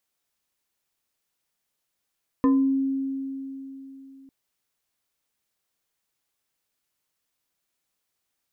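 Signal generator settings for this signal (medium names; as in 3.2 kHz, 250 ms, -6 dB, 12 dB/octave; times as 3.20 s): FM tone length 1.85 s, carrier 270 Hz, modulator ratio 2.79, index 0.71, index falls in 0.42 s exponential, decay 3.50 s, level -15 dB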